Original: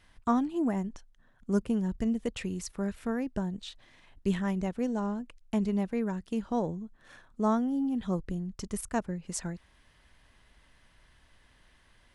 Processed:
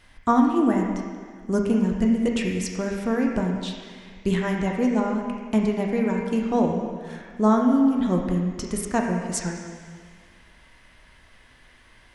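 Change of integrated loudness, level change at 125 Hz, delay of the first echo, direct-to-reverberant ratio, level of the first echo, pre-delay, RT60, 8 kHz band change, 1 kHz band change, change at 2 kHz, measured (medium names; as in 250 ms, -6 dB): +8.5 dB, +7.0 dB, no echo, -1.0 dB, no echo, 5 ms, 1.8 s, +7.5 dB, +9.0 dB, +10.5 dB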